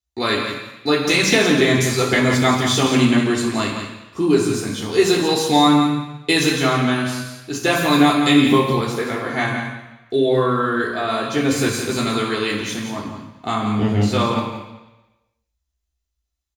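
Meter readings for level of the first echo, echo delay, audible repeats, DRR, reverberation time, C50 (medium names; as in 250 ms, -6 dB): -8.0 dB, 171 ms, 1, -5.0 dB, 1.0 s, 2.5 dB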